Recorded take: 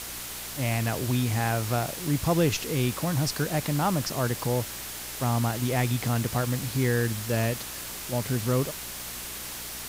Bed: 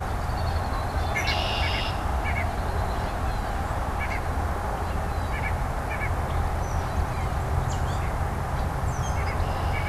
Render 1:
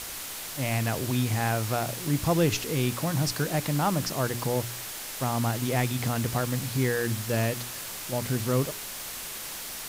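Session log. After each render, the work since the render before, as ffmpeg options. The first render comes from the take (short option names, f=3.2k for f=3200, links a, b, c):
-af "bandreject=f=60:t=h:w=4,bandreject=f=120:t=h:w=4,bandreject=f=180:t=h:w=4,bandreject=f=240:t=h:w=4,bandreject=f=300:t=h:w=4,bandreject=f=360:t=h:w=4,bandreject=f=420:t=h:w=4"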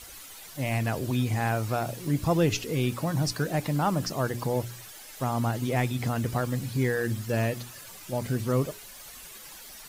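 -af "afftdn=nr=12:nf=-38"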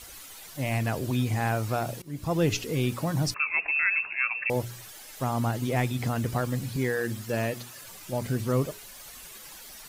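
-filter_complex "[0:a]asettb=1/sr,asplit=3[a][b][c];[a]atrim=end=3.344[d];[b]atrim=start=3.34:end=4.5,asetpts=PTS-STARTPTS,afade=t=in:d=0.004:c=qsin,afade=t=out:st=1.156:d=0.004:c=qsin,lowpass=f=2.4k:t=q:w=0.5098,lowpass=f=2.4k:t=q:w=0.6013,lowpass=f=2.4k:t=q:w=0.9,lowpass=f=2.4k:t=q:w=2.563,afreqshift=-2800[e];[c]atrim=start=4.496[f];[d][e]acrossfade=d=0.004:c1=hsin:c2=qsin[g];[g][f]acrossfade=d=0.004:c1=qsin:c2=hsin,asettb=1/sr,asplit=3[h][i][j];[h]atrim=end=6.764[k];[i]atrim=start=6.76:end=7.82,asetpts=PTS-STARTPTS,afade=t=in:d=0.004:c=qsin,afade=t=out:st=1.056:d=0.004:c=qsin,highpass=f=160:p=1[l];[j]atrim=start=7.816[m];[k][l]acrossfade=d=0.004:c1=hsin:c2=qsin[n];[n][m]acrossfade=d=0.004:c1=qsin:c2=hsin,asplit=2[o][p];[o]atrim=end=2.02,asetpts=PTS-STARTPTS,afade=t=out:st=2.016:d=0.004:c=hsin:silence=0.0891251[q];[p]atrim=start=2.02,asetpts=PTS-STARTPTS,afade=t=in:d=0.46:silence=0.0891251[r];[q][r]concat=n=2:v=0:a=1"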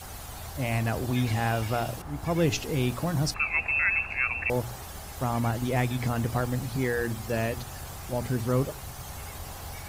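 -filter_complex "[1:a]volume=-14.5dB[a];[0:a][a]amix=inputs=2:normalize=0"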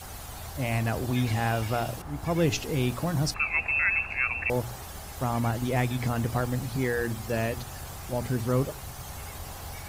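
-af anull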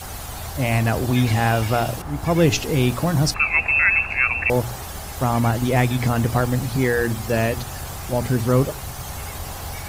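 -af "volume=8dB"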